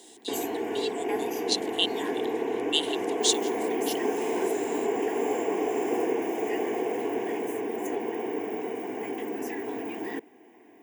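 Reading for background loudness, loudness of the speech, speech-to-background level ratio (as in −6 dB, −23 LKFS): −30.0 LKFS, −30.5 LKFS, −0.5 dB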